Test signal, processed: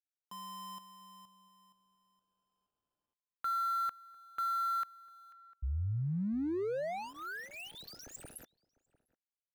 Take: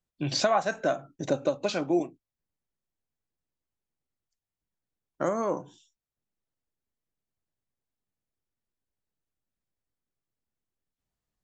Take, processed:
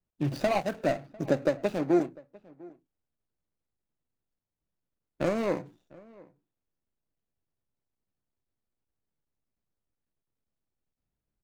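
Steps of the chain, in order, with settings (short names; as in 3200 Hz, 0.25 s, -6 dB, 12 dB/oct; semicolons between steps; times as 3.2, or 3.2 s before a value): median filter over 41 samples; outdoor echo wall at 120 m, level -23 dB; gain +2.5 dB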